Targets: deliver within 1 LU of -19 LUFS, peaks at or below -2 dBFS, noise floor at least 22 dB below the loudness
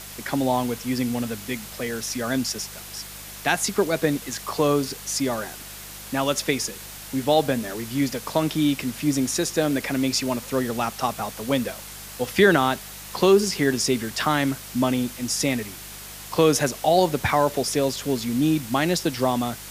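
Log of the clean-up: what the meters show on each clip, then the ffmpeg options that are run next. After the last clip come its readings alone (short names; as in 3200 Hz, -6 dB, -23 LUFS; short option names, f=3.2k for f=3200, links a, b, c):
hum 50 Hz; harmonics up to 200 Hz; hum level -45 dBFS; noise floor -39 dBFS; noise floor target -46 dBFS; loudness -23.5 LUFS; peak -3.5 dBFS; loudness target -19.0 LUFS
-> -af "bandreject=f=50:t=h:w=4,bandreject=f=100:t=h:w=4,bandreject=f=150:t=h:w=4,bandreject=f=200:t=h:w=4"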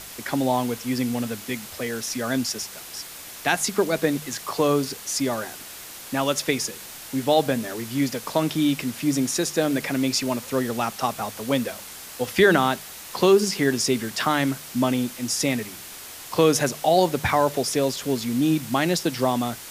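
hum none; noise floor -40 dBFS; noise floor target -46 dBFS
-> -af "afftdn=nr=6:nf=-40"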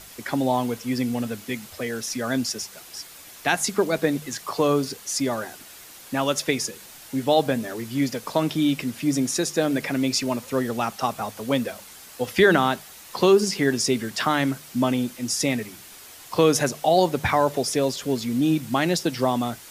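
noise floor -45 dBFS; noise floor target -46 dBFS
-> -af "afftdn=nr=6:nf=-45"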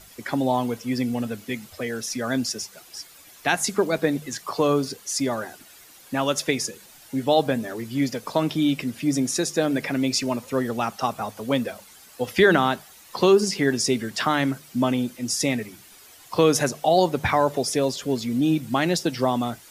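noise floor -49 dBFS; loudness -24.0 LUFS; peak -4.5 dBFS; loudness target -19.0 LUFS
-> -af "volume=5dB,alimiter=limit=-2dB:level=0:latency=1"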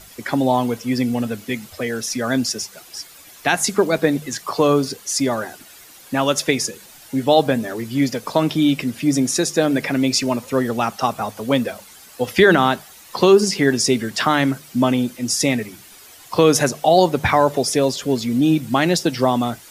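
loudness -19.0 LUFS; peak -2.0 dBFS; noise floor -44 dBFS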